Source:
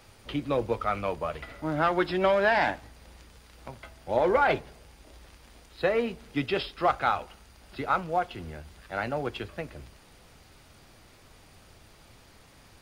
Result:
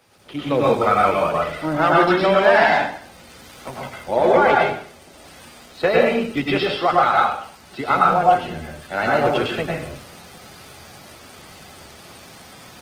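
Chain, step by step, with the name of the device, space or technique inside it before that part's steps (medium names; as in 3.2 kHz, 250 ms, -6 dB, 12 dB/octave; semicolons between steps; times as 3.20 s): far-field microphone of a smart speaker (reverberation RT60 0.50 s, pre-delay 95 ms, DRR -2.5 dB; high-pass 140 Hz 12 dB/octave; level rider gain up to 11 dB; trim -1 dB; Opus 16 kbps 48 kHz)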